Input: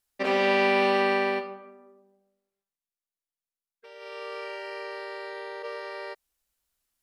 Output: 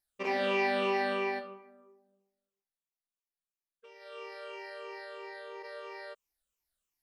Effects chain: drifting ripple filter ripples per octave 0.76, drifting -3 Hz, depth 11 dB; trim -8.5 dB

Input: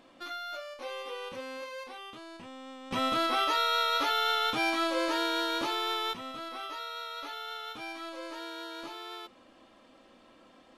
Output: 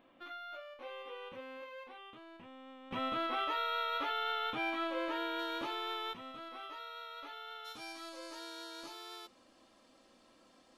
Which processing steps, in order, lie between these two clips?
high-order bell 7.1 kHz -15 dB, from 5.38 s -8.5 dB, from 7.64 s +8.5 dB; trim -7 dB

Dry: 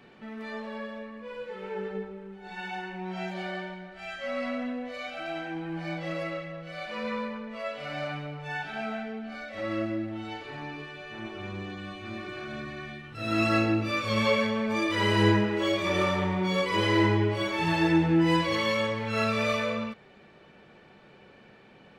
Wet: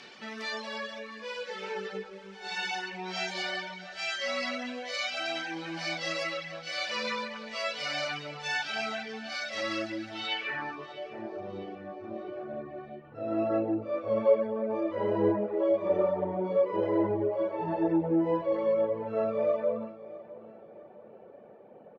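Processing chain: RIAA curve recording; reverb removal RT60 0.7 s; in parallel at -0.5 dB: compression, threshold -41 dBFS, peak gain reduction 18.5 dB; on the sum: low-pass sweep 5.5 kHz -> 590 Hz, 10.12–11.00 s; feedback delay 655 ms, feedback 43%, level -18 dB; trim -1 dB

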